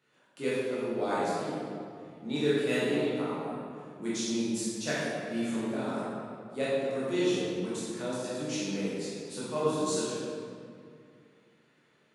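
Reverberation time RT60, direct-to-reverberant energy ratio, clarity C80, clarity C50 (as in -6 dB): 2.3 s, -9.5 dB, -1.0 dB, -3.5 dB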